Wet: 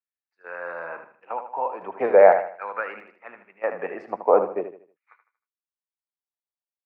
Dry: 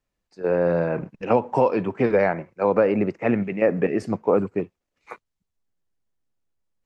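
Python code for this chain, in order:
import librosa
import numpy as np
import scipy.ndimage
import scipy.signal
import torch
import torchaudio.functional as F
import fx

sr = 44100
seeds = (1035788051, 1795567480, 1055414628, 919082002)

y = scipy.signal.sosfilt(scipy.signal.butter(2, 2400.0, 'lowpass', fs=sr, output='sos'), x)
y = fx.tilt_eq(y, sr, slope=-2.0)
y = fx.chopper(y, sr, hz=0.55, depth_pct=60, duty_pct=65)
y = fx.filter_lfo_highpass(y, sr, shape='saw_down', hz=0.43, low_hz=600.0, high_hz=1800.0, q=1.9)
y = fx.echo_feedback(y, sr, ms=78, feedback_pct=40, wet_db=-9.0)
y = fx.band_widen(y, sr, depth_pct=40)
y = y * 10.0 ** (-1.0 / 20.0)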